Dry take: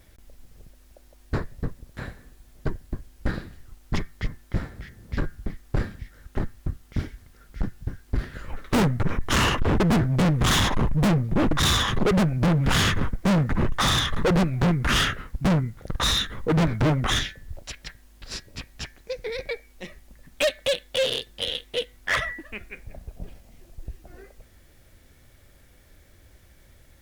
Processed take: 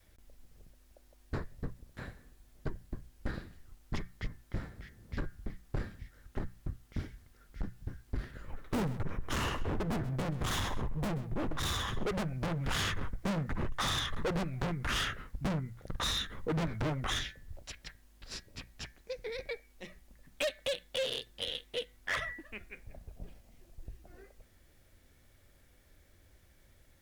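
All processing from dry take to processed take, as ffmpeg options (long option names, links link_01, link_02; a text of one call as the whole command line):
ffmpeg -i in.wav -filter_complex "[0:a]asettb=1/sr,asplit=3[link_01][link_02][link_03];[link_01]atrim=end=8.314[link_04];[link_02]atrim=start=8.31:end=12.07,asetpts=PTS-STARTPTS,afade=type=in:duration=0.004:curve=qsin,afade=type=out:start_time=3.756:duration=0.004:curve=qsin,equalizer=frequency=3700:width=0.31:gain=-4.5,aecho=1:1:130:0.168,atrim=end_sample=165816[link_05];[link_03]atrim=start=12.066[link_06];[link_04][link_05]acrossfade=duration=0.004:curve1=hsin:curve2=qsin[link_07];[link_07][link_06]acrossfade=duration=0.004:curve1=qsin:curve2=hsin,bandreject=frequency=60:width_type=h:width=6,bandreject=frequency=120:width_type=h:width=6,bandreject=frequency=180:width_type=h:width=6,adynamicequalizer=threshold=0.02:dfrequency=200:dqfactor=0.89:tfrequency=200:tqfactor=0.89:attack=5:release=100:ratio=0.375:range=3:mode=cutabove:tftype=bell,acompressor=threshold=-21dB:ratio=6,volume=-8.5dB" out.wav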